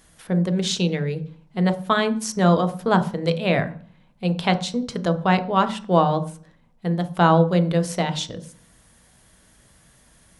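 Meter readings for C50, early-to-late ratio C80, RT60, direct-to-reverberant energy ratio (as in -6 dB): 14.5 dB, 19.0 dB, 0.45 s, 8.5 dB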